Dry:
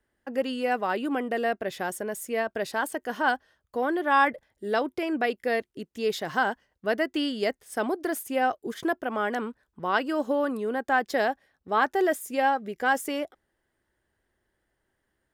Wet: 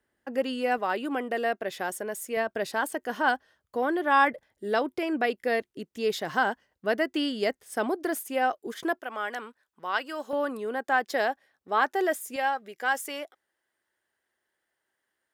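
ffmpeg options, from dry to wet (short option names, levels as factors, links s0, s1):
-af "asetnsamples=n=441:p=0,asendcmd='0.78 highpass f 290;2.37 highpass f 100;8.19 highpass f 310;8.99 highpass f 1200;10.33 highpass f 400;12.36 highpass f 960',highpass=f=110:p=1"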